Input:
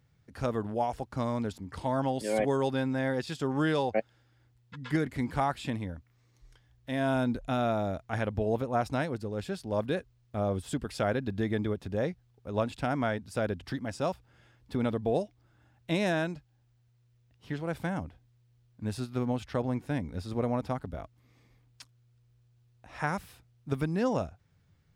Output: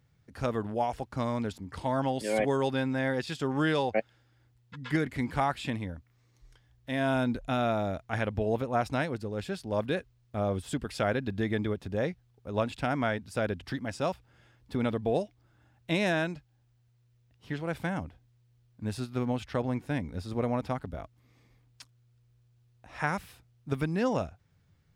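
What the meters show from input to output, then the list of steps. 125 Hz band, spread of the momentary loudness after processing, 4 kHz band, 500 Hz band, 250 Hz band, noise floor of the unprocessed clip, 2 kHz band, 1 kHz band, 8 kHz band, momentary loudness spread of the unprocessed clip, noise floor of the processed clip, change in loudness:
0.0 dB, 9 LU, +2.5 dB, 0.0 dB, 0.0 dB, −67 dBFS, +2.5 dB, +0.5 dB, +0.5 dB, 9 LU, −67 dBFS, +0.5 dB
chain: dynamic equaliser 2,400 Hz, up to +4 dB, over −48 dBFS, Q 0.94

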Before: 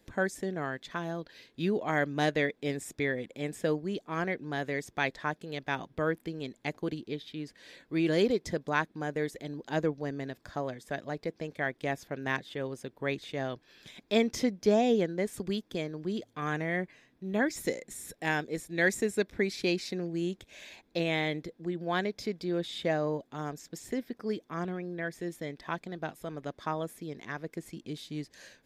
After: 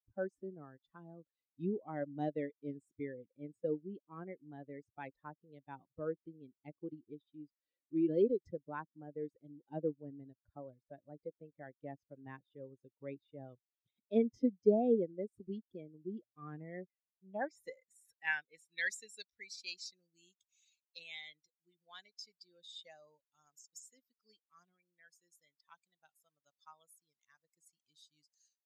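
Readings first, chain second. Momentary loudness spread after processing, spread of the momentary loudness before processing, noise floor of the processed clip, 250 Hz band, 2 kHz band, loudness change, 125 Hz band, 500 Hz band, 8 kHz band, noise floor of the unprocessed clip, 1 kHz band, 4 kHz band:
22 LU, 11 LU, below −85 dBFS, −8.0 dB, −12.0 dB, −6.5 dB, −13.5 dB, −7.5 dB, −12.5 dB, −69 dBFS, −13.5 dB, −13.0 dB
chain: spectral dynamics exaggerated over time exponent 2
band-pass filter sweep 340 Hz → 6,900 Hz, 0:16.63–0:19.49
parametric band 330 Hz −7.5 dB 0.41 octaves
level +6 dB

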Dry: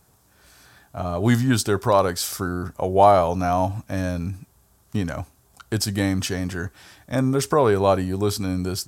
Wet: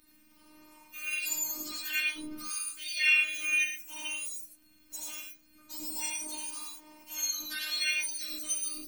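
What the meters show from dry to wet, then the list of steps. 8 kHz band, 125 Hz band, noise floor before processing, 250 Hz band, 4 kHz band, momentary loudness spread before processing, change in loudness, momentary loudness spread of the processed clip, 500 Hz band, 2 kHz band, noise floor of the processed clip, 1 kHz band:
−0.5 dB, below −40 dB, −60 dBFS, −25.0 dB, −1.5 dB, 14 LU, −8.5 dB, 15 LU, −36.0 dB, +2.5 dB, −62 dBFS, −28.5 dB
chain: frequency axis turned over on the octave scale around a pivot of 1,300 Hz
tilt shelving filter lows −9.5 dB, about 1,300 Hz
harmonic and percussive parts rebalanced percussive −15 dB
downward compressor 1.5 to 1, threshold −48 dBFS, peak gain reduction 14 dB
phases set to zero 306 Hz
surface crackle 63 per second −58 dBFS
reverb whose tail is shaped and stops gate 130 ms rising, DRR −0.5 dB

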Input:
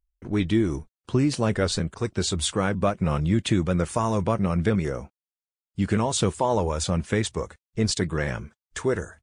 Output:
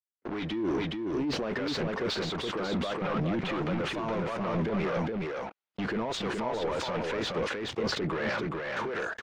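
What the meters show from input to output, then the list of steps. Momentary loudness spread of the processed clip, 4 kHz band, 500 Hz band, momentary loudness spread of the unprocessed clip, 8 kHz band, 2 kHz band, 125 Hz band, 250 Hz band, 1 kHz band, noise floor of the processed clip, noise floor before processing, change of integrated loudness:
4 LU, −3.5 dB, −4.5 dB, 8 LU, −15.5 dB, −0.5 dB, −11.0 dB, −6.5 dB, −4.0 dB, −83 dBFS, below −85 dBFS, −6.5 dB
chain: noise gate −38 dBFS, range −30 dB
high-pass filter 350 Hz 12 dB per octave
compressor whose output falls as the input rises −33 dBFS, ratio −1
leveller curve on the samples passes 3
soft clipping −25.5 dBFS, distortion −11 dB
two-band tremolo in antiphase 1.5 Hz, depth 50%, crossover 650 Hz
high-frequency loss of the air 250 metres
single-tap delay 419 ms −3 dB
level that may fall only so fast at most 43 dB per second

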